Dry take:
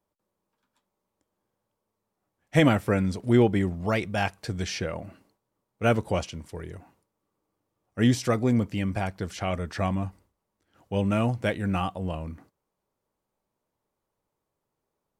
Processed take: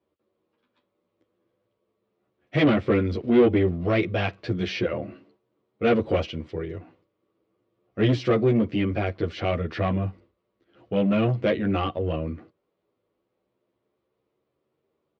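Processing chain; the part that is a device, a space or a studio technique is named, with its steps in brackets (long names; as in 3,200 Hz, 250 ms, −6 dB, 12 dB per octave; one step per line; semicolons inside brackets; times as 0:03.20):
barber-pole flanger into a guitar amplifier (barber-pole flanger 10.7 ms +0.34 Hz; soft clipping −24.5 dBFS, distortion −10 dB; loudspeaker in its box 88–3,800 Hz, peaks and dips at 170 Hz −3 dB, 350 Hz +7 dB, 490 Hz +4 dB, 880 Hz −9 dB, 1,600 Hz −4 dB)
level +8.5 dB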